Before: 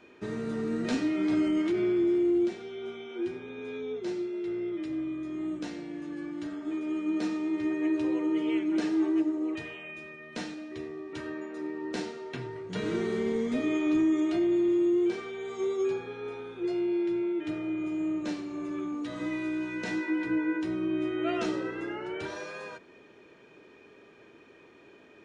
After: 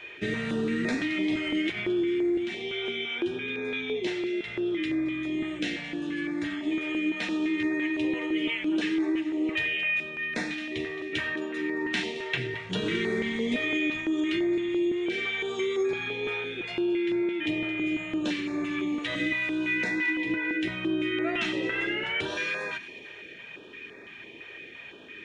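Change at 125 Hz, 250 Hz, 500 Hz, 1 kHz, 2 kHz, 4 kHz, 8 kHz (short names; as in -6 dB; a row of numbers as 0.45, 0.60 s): +3.0 dB, 0.0 dB, 0.0 dB, +1.0 dB, +12.0 dB, +12.0 dB, n/a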